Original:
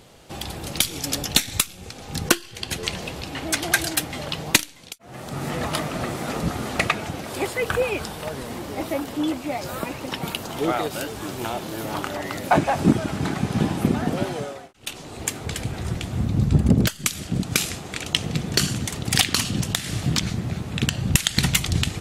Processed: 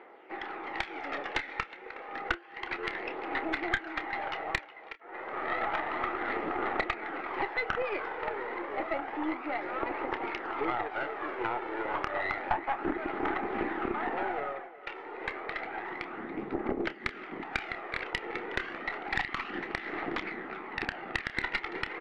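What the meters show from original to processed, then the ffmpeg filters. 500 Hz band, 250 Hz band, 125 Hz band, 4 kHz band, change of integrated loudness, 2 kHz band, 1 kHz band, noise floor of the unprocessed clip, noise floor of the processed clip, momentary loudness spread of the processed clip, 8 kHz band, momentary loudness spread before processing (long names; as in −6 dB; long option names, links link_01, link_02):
−7.0 dB, −13.0 dB, −26.0 dB, −18.5 dB, −10.0 dB, −4.0 dB, −3.5 dB, −42 dBFS, −48 dBFS, 7 LU, below −30 dB, 11 LU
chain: -filter_complex "[0:a]highpass=frequency=350:width=0.5412,highpass=frequency=350:width=1.3066,equalizer=frequency=350:width_type=q:width=4:gain=6,equalizer=frequency=580:width_type=q:width=4:gain=-4,equalizer=frequency=830:width_type=q:width=4:gain=6,equalizer=frequency=1300:width_type=q:width=4:gain=6,equalizer=frequency=2000:width_type=q:width=4:gain=10,lowpass=frequency=2200:width=0.5412,lowpass=frequency=2200:width=1.3066,aphaser=in_gain=1:out_gain=1:delay=2.3:decay=0.38:speed=0.3:type=triangular,acompressor=threshold=-24dB:ratio=5,asplit=2[link_01][link_02];[link_02]aecho=0:1:366:0.158[link_03];[link_01][link_03]amix=inputs=2:normalize=0,aeval=exprs='(tanh(5.62*val(0)+0.75)-tanh(0.75))/5.62':channel_layout=same,asplit=2[link_04][link_05];[link_05]adelay=29,volume=-13dB[link_06];[link_04][link_06]amix=inputs=2:normalize=0"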